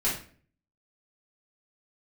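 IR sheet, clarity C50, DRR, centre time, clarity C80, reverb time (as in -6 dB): 5.0 dB, -8.5 dB, 33 ms, 11.0 dB, 0.45 s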